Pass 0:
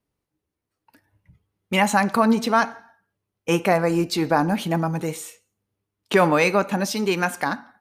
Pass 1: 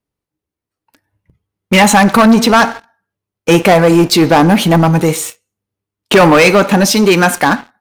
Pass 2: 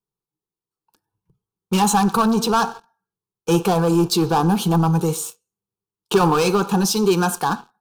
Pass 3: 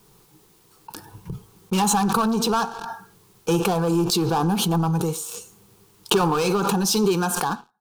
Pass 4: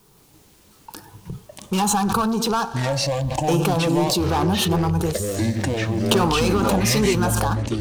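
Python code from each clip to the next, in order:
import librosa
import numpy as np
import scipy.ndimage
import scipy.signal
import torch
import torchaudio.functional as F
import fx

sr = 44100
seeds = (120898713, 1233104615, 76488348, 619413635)

y1 = fx.leveller(x, sr, passes=3)
y1 = y1 * 10.0 ** (4.5 / 20.0)
y2 = fx.fixed_phaser(y1, sr, hz=400.0, stages=8)
y2 = y2 * 10.0 ** (-6.5 / 20.0)
y3 = fx.pre_swell(y2, sr, db_per_s=21.0)
y3 = y3 * 10.0 ** (-4.5 / 20.0)
y4 = fx.echo_pitch(y3, sr, ms=168, semitones=-7, count=3, db_per_echo=-3.0)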